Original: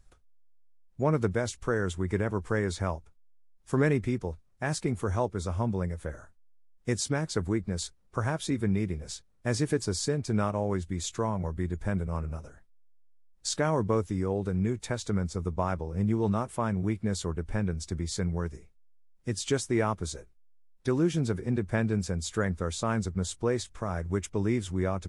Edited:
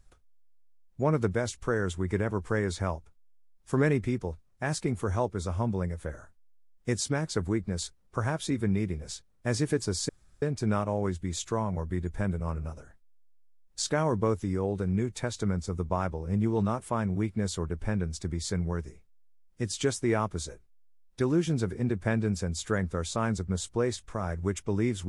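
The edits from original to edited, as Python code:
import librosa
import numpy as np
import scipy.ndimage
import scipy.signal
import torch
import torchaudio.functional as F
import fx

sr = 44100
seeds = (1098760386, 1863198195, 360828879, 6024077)

y = fx.edit(x, sr, fx.insert_room_tone(at_s=10.09, length_s=0.33), tone=tone)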